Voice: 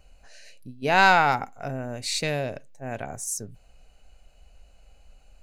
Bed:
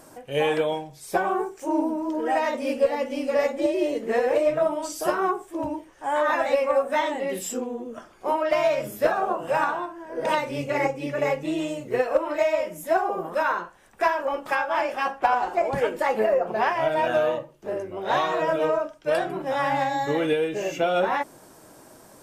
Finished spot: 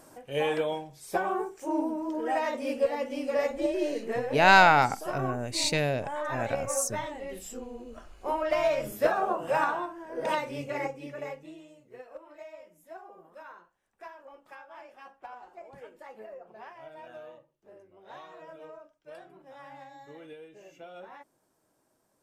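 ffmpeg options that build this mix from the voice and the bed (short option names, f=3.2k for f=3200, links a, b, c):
-filter_complex "[0:a]adelay=3500,volume=0dB[a];[1:a]volume=3dB,afade=t=out:st=4:d=0.28:silence=0.501187,afade=t=in:st=7.63:d=1.27:silence=0.398107,afade=t=out:st=9.9:d=1.73:silence=0.0944061[b];[a][b]amix=inputs=2:normalize=0"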